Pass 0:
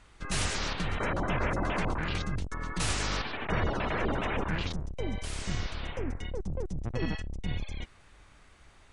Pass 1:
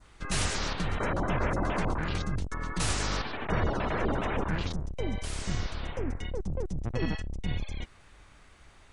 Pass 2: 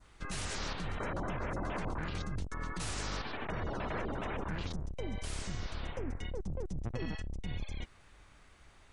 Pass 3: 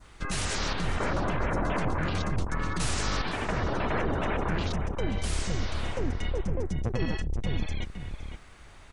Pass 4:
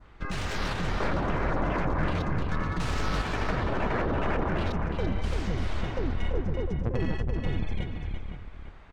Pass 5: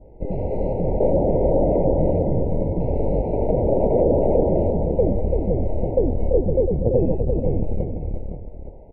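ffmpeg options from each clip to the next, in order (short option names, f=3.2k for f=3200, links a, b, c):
-af "adynamicequalizer=threshold=0.00355:dfrequency=2600:dqfactor=1.1:tfrequency=2600:tqfactor=1.1:attack=5:release=100:ratio=0.375:range=2.5:mode=cutabove:tftype=bell,volume=1.5dB"
-af "alimiter=level_in=0.5dB:limit=-24dB:level=0:latency=1:release=71,volume=-0.5dB,volume=-4dB"
-filter_complex "[0:a]asplit=2[a][b];[b]adelay=513.1,volume=-7dB,highshelf=f=4k:g=-11.5[c];[a][c]amix=inputs=2:normalize=0,volume=8dB"
-af "aecho=1:1:338|453:0.531|0.106,adynamicsmooth=sensitivity=3:basefreq=2.7k"
-af "lowpass=f=540:t=q:w=3.5,afftfilt=real='re*eq(mod(floor(b*sr/1024/970),2),0)':imag='im*eq(mod(floor(b*sr/1024/970),2),0)':win_size=1024:overlap=0.75,volume=6.5dB"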